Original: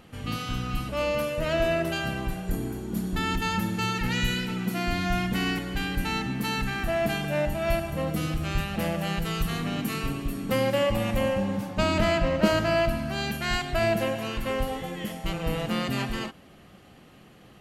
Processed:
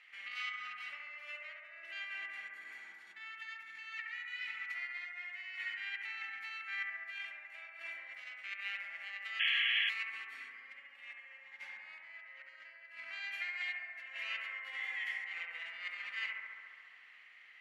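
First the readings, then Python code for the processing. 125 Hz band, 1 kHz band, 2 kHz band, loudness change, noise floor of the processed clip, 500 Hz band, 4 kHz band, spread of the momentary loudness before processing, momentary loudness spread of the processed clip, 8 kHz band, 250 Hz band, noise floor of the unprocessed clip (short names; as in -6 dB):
under -40 dB, -22.0 dB, -5.5 dB, -12.0 dB, -58 dBFS, under -35 dB, -8.0 dB, 8 LU, 13 LU, under -25 dB, under -40 dB, -52 dBFS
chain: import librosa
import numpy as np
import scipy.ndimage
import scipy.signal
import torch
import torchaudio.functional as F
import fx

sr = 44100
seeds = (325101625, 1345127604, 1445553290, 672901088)

y = fx.over_compress(x, sr, threshold_db=-32.0, ratio=-0.5)
y = fx.ladder_bandpass(y, sr, hz=2200.0, resonance_pct=75)
y = fx.echo_bbd(y, sr, ms=69, stages=1024, feedback_pct=82, wet_db=-3.5)
y = fx.spec_paint(y, sr, seeds[0], shape='noise', start_s=9.39, length_s=0.51, low_hz=1600.0, high_hz=3400.0, level_db=-32.0)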